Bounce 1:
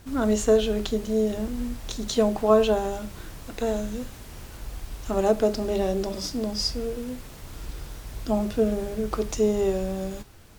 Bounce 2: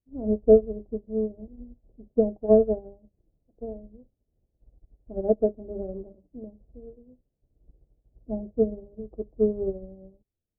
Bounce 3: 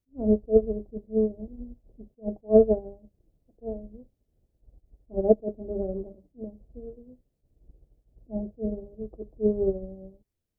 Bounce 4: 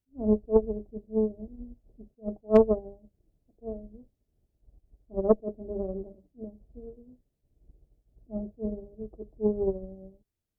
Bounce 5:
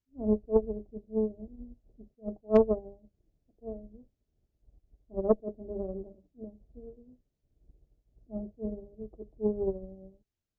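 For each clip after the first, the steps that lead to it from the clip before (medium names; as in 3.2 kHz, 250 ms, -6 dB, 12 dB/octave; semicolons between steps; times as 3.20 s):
steep low-pass 640 Hz 36 dB/octave; upward expansion 2.5:1, over -44 dBFS; trim +5 dB
attacks held to a fixed rise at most 340 dB/s; trim +3.5 dB
band-stop 510 Hz, Q 12; Chebyshev shaper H 2 -14 dB, 3 -34 dB, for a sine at -6.5 dBFS; trim -2 dB
resampled via 16 kHz; trim -3 dB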